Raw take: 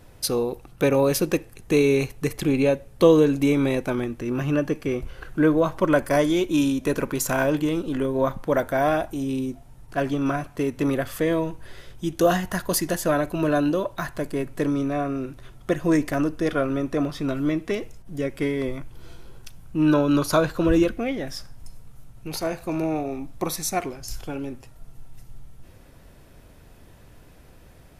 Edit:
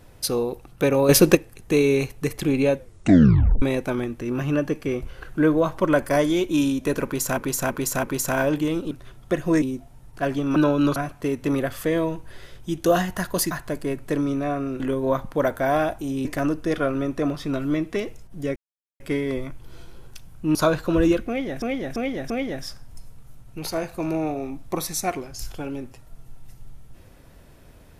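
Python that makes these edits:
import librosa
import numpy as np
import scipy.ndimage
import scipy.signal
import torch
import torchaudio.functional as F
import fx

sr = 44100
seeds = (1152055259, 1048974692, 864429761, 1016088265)

y = fx.edit(x, sr, fx.clip_gain(start_s=1.09, length_s=0.26, db=8.5),
    fx.tape_stop(start_s=2.76, length_s=0.86),
    fx.repeat(start_s=7.04, length_s=0.33, count=4),
    fx.swap(start_s=7.92, length_s=1.45, other_s=15.29, other_length_s=0.71),
    fx.cut(start_s=12.86, length_s=1.14),
    fx.insert_silence(at_s=18.31, length_s=0.44),
    fx.move(start_s=19.86, length_s=0.4, to_s=10.31),
    fx.repeat(start_s=20.99, length_s=0.34, count=4), tone=tone)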